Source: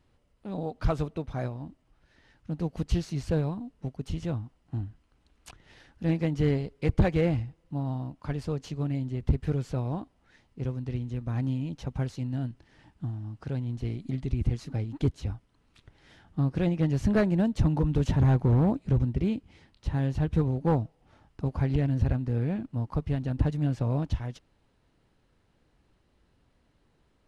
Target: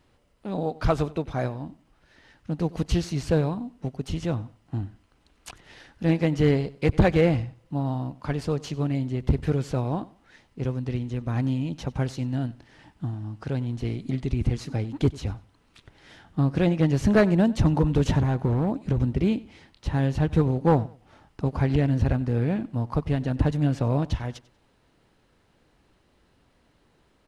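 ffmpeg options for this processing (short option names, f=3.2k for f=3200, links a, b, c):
-filter_complex "[0:a]lowshelf=f=170:g=-6.5,asettb=1/sr,asplit=3[a][b][c];[a]atrim=end=18.184[d];[b]atrim=start=18.18:end=18.98,asetpts=PTS-STARTPTS,afade=t=in:d=0.004:c=qsin,afade=t=out:st=0.796:d=0.004:c=qsin,acompressor=threshold=-27dB:ratio=6[e];[c]atrim=start=18.976[f];[d][e]acrossfade=d=0.004:c1=hsin:c2=qsin[g];[g][f]acrossfade=d=0.004:c1=qsin:c2=hsin,asplit=2[h][i];[i]aecho=0:1:94|188:0.0944|0.0245[j];[h][j]amix=inputs=2:normalize=0,volume=7dB"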